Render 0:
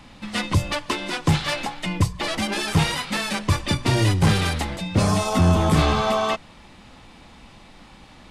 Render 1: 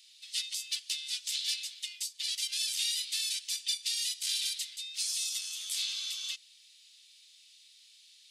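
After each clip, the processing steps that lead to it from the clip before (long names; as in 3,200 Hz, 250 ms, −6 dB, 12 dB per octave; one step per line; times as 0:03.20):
inverse Chebyshev high-pass filter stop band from 610 Hz, stop band 80 dB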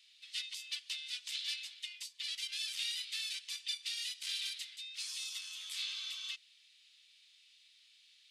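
bass and treble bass +3 dB, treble −14 dB
level +1 dB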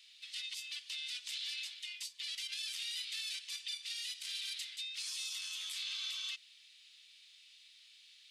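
brickwall limiter −35.5 dBFS, peak gain reduction 10 dB
level +4 dB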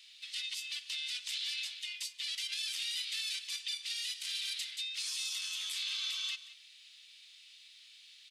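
single-tap delay 179 ms −16 dB
level +3.5 dB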